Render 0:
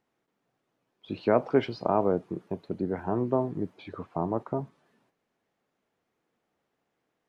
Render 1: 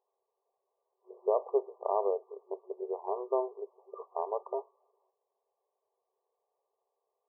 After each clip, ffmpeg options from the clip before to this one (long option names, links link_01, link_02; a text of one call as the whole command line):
ffmpeg -i in.wav -af "afftfilt=real='re*between(b*sr/4096,370,1200)':imag='im*between(b*sr/4096,370,1200)':win_size=4096:overlap=0.75,alimiter=limit=-15dB:level=0:latency=1:release=315,volume=-2dB" out.wav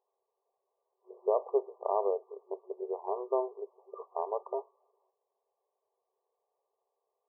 ffmpeg -i in.wav -af anull out.wav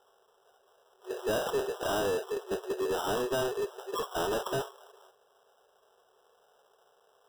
ffmpeg -i in.wav -filter_complex "[0:a]asplit=2[link_01][link_02];[link_02]highpass=frequency=720:poles=1,volume=35dB,asoftclip=type=tanh:threshold=-16.5dB[link_03];[link_01][link_03]amix=inputs=2:normalize=0,lowpass=frequency=1100:poles=1,volume=-6dB,acrossover=split=480[link_04][link_05];[link_05]acrusher=samples=20:mix=1:aa=0.000001[link_06];[link_04][link_06]amix=inputs=2:normalize=0,volume=-5dB" out.wav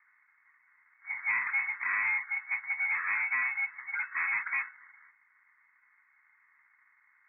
ffmpeg -i in.wav -af "lowpass=frequency=2200:width_type=q:width=0.5098,lowpass=frequency=2200:width_type=q:width=0.6013,lowpass=frequency=2200:width_type=q:width=0.9,lowpass=frequency=2200:width_type=q:width=2.563,afreqshift=-2600" out.wav